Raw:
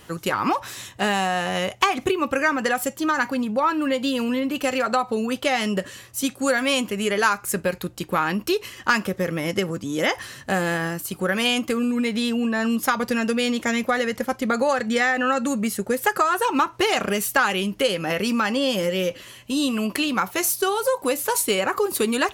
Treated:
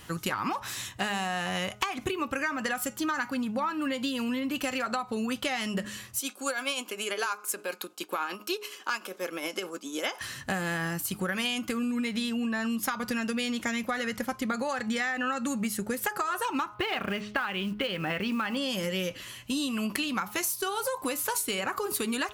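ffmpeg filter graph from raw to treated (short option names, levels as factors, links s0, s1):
-filter_complex "[0:a]asettb=1/sr,asplit=3[s0][s1][s2];[s0]atrim=end=6.194[s3];[s1]atrim=start=6.19:end=10.21,asetpts=PTS-STARTPTS,afade=t=in:d=0.004:c=qsin,afade=t=out:st=4.016:d=0.004:c=qsin,highpass=f=320:w=0.5412,highpass=f=320:w=1.3066,bandreject=f=1900:w=5,tremolo=f=9.8:d=0.52[s4];[s2]atrim=start=10.206[s5];[s3][s4]acrossfade=d=0.004:c1=hsin:c2=qsin[s6];[s6][s5]acrossfade=d=0.004:c1=qsin:c2=hsin,asettb=1/sr,asplit=3[s7][s8][s9];[s7]atrim=end=16.744[s10];[s8]atrim=start=16.74:end=18.57,asetpts=PTS-STARTPTS,afade=t=in:d=0.004:c=qsin,afade=t=out:st=1.826:d=0.004:c=qsin,lowpass=f=3700:w=0.5412,lowpass=f=3700:w=1.3066,acrusher=bits=7:mode=log:mix=0:aa=0.000001[s11];[s9]atrim=start=18.566[s12];[s10][s11]acrossfade=d=0.004:c1=hsin:c2=qsin[s13];[s13][s12]acrossfade=d=0.004:c1=qsin:c2=hsin,equalizer=f=480:w=1.1:g=-6.5,bandreject=f=209.2:t=h:w=4,bandreject=f=418.4:t=h:w=4,bandreject=f=627.6:t=h:w=4,bandreject=f=836.8:t=h:w=4,bandreject=f=1046:t=h:w=4,bandreject=f=1255.2:t=h:w=4,bandreject=f=1464.4:t=h:w=4,acompressor=threshold=0.0447:ratio=6"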